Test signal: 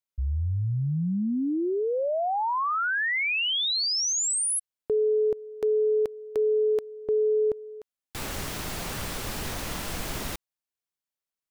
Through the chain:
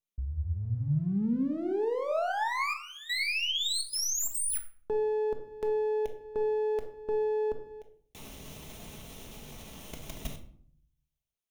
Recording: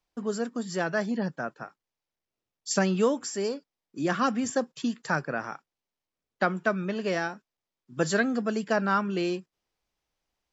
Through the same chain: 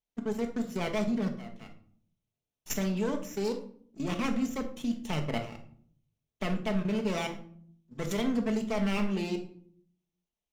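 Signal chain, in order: minimum comb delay 0.31 ms; level quantiser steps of 16 dB; shoebox room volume 770 m³, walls furnished, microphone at 1.5 m

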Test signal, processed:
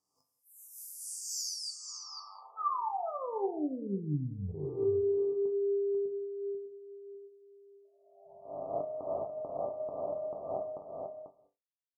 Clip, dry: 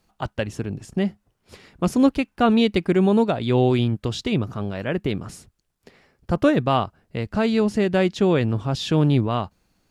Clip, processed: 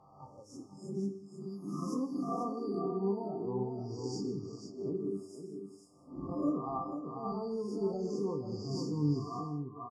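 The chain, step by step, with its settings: spectral swells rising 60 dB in 1.29 s; HPF 120 Hz 6 dB/oct; spectral noise reduction 18 dB; bell 590 Hz -7.5 dB 0.27 oct; compressor 6:1, threshold -20 dBFS; brick-wall FIR band-stop 1300–4500 Hz; air absorption 62 m; resonator bank G2 sus4, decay 0.21 s; on a send: echo 0.492 s -7 dB; on the sum: non-linear reverb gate 0.22 s flat, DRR 9.5 dB; noise-modulated level, depth 60%; gain +2 dB

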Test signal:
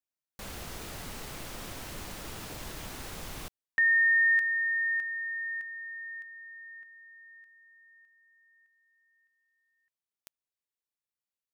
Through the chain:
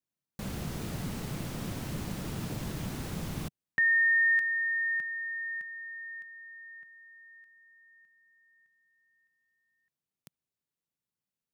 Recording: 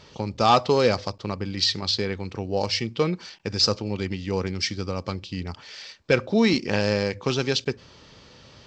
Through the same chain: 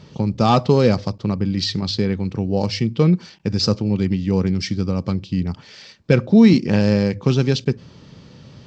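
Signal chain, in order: bell 160 Hz +15 dB 2.1 oct; gain -1.5 dB

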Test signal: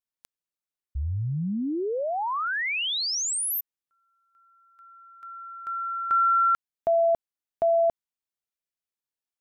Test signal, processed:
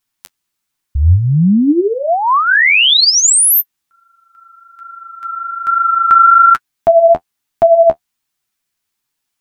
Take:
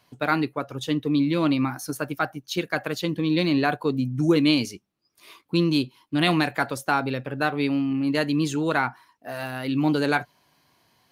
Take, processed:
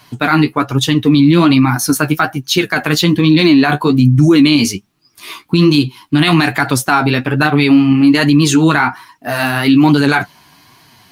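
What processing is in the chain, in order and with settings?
bell 530 Hz -11 dB 0.57 oct; flange 1.2 Hz, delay 6.2 ms, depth 7.8 ms, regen +28%; maximiser +23 dB; gain -1 dB

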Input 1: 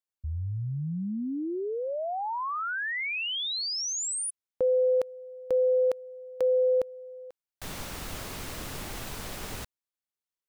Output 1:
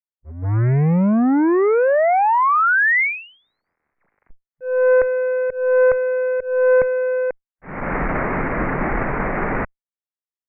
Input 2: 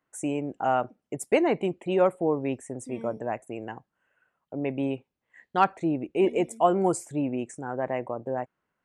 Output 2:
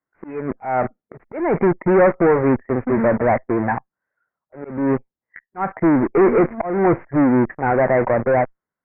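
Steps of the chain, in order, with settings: spectral noise reduction 14 dB; in parallel at -10 dB: fuzz box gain 46 dB, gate -47 dBFS; on the sum: auto swell 0.327 s; tube stage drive 17 dB, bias 0.5; steep low-pass 2200 Hz 72 dB/oct; gain +8.5 dB

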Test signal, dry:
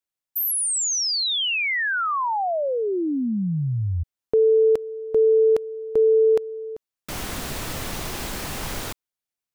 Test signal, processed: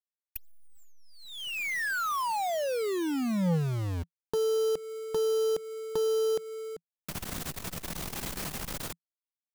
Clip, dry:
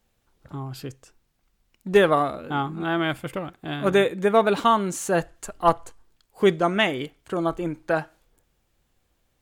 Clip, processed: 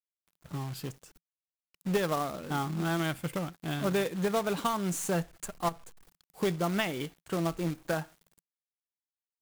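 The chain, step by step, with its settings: tracing distortion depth 0.027 ms; high shelf 8500 Hz +7.5 dB; companded quantiser 4-bit; compressor 2.5:1, threshold -23 dBFS; bell 170 Hz +8.5 dB 0.41 oct; core saturation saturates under 330 Hz; gain -5 dB

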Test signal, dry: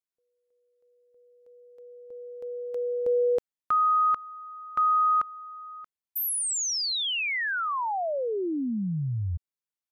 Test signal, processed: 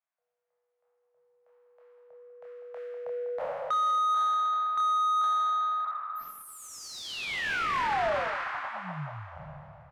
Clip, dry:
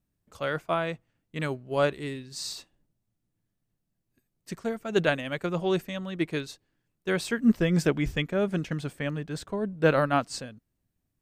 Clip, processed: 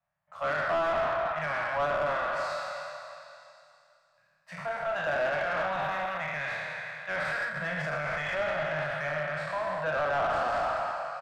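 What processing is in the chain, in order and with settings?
spectral trails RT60 2.56 s; doubler 27 ms -5.5 dB; delay with a stepping band-pass 0.196 s, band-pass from 890 Hz, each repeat 0.7 oct, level -10 dB; limiter -15 dBFS; elliptic band-stop 160–610 Hz, stop band 40 dB; three-band isolator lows -13 dB, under 180 Hz, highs -15 dB, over 2300 Hz; overdrive pedal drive 19 dB, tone 1400 Hz, clips at -15.5 dBFS; gain -4 dB

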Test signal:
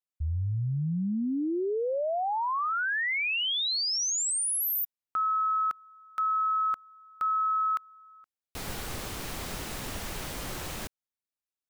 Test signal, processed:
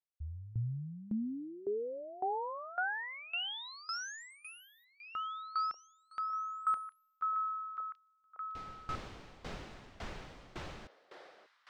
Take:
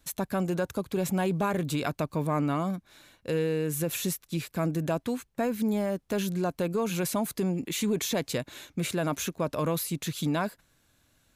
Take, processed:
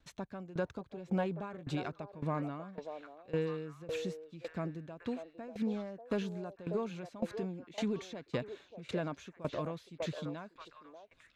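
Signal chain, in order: air absorption 150 m; on a send: delay with a stepping band-pass 0.59 s, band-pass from 580 Hz, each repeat 1.4 oct, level -3 dB; on the sum: dB-ramp tremolo decaying 1.8 Hz, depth 19 dB; gain -3 dB

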